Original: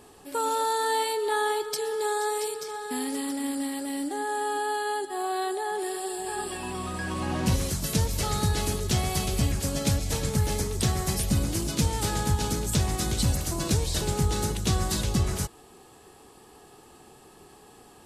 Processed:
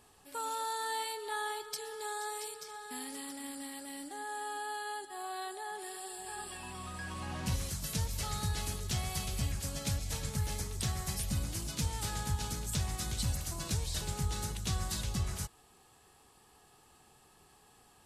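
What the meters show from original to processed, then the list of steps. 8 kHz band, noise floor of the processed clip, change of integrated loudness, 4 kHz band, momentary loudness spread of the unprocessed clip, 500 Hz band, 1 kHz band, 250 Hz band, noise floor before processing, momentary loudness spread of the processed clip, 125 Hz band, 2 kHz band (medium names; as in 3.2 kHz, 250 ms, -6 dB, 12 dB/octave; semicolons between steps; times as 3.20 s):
-7.5 dB, -63 dBFS, -9.5 dB, -7.5 dB, 6 LU, -15.5 dB, -10.0 dB, -13.0 dB, -53 dBFS, 7 LU, -9.0 dB, -8.0 dB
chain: peaking EQ 350 Hz -9 dB 1.7 oct; trim -7.5 dB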